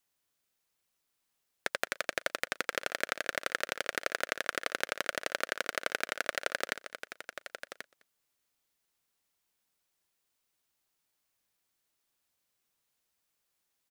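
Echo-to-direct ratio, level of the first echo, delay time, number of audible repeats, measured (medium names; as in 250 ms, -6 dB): -10.5 dB, -23.5 dB, 208 ms, 3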